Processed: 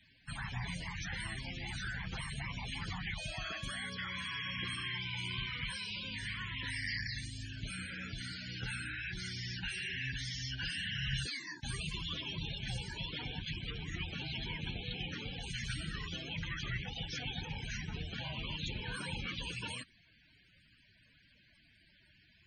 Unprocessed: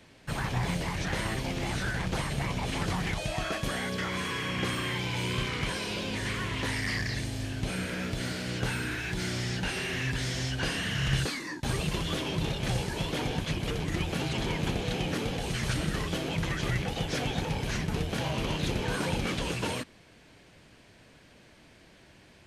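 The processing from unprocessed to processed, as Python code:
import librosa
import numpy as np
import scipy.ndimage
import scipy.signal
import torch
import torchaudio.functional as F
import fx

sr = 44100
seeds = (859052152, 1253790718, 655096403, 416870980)

y = fx.tone_stack(x, sr, knobs='5-5-5')
y = fx.spec_topn(y, sr, count=64)
y = F.gain(torch.from_numpy(y), 5.0).numpy()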